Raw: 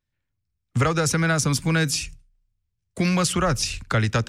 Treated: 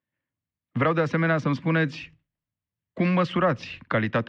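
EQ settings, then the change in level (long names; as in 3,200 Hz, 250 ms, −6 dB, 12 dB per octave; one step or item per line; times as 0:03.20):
loudspeaker in its box 230–2,600 Hz, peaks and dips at 410 Hz −8 dB, 800 Hz −6 dB, 1,400 Hz −8 dB, 2,400 Hz −7 dB
+4.5 dB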